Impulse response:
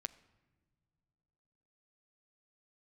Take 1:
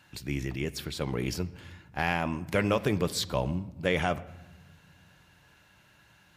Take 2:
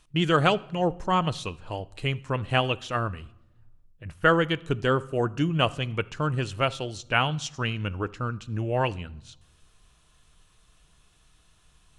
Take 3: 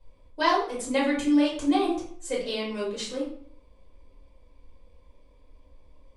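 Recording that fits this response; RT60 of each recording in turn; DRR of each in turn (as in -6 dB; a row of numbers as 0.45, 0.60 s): 1; not exponential, not exponential, 0.60 s; 13.0, 16.5, -7.0 dB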